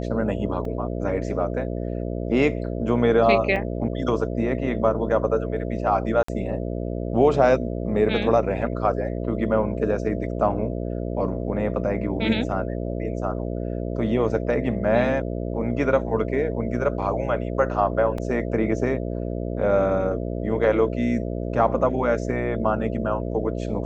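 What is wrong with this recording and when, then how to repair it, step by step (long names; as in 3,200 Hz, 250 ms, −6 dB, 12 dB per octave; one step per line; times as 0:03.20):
mains buzz 60 Hz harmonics 11 −28 dBFS
0:00.65: drop-out 2.2 ms
0:03.56: drop-out 2.2 ms
0:06.23–0:06.28: drop-out 54 ms
0:18.18: drop-out 2.9 ms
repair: hum removal 60 Hz, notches 11
repair the gap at 0:00.65, 2.2 ms
repair the gap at 0:03.56, 2.2 ms
repair the gap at 0:06.23, 54 ms
repair the gap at 0:18.18, 2.9 ms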